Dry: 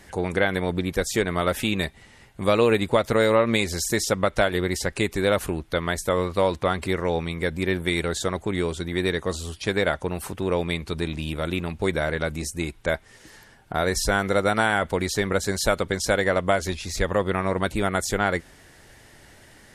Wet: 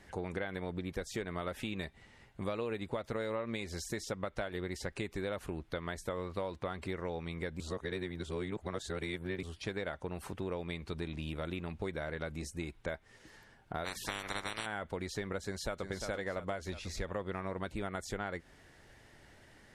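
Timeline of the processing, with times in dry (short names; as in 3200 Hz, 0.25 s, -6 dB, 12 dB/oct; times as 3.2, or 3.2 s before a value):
7.6–9.43 reverse
13.84–14.65 spectral limiter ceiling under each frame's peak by 30 dB
15.43–15.84 echo throw 0.35 s, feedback 50%, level -8.5 dB
whole clip: compressor 4:1, threshold -27 dBFS; high shelf 7000 Hz -11 dB; gain -8 dB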